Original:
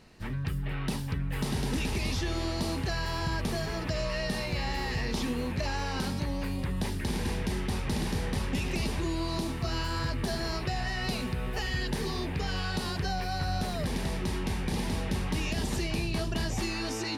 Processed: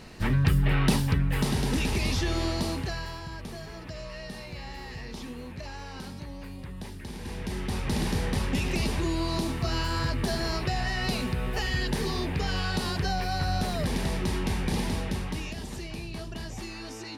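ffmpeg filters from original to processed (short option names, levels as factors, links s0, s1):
-af "volume=11.2,afade=t=out:st=0.76:d=0.8:silence=0.473151,afade=t=out:st=2.46:d=0.76:silence=0.266073,afade=t=in:st=7.19:d=0.82:silence=0.281838,afade=t=out:st=14.75:d=0.84:silence=0.334965"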